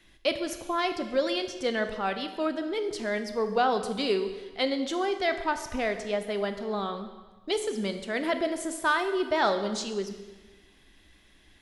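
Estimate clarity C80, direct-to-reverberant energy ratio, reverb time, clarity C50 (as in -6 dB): 11.0 dB, 7.5 dB, 1.3 s, 10.0 dB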